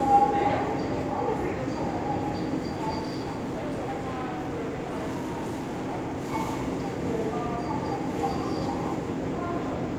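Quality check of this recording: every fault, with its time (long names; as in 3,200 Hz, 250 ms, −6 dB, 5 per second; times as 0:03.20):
0:02.99–0:06.34: clipping −28 dBFS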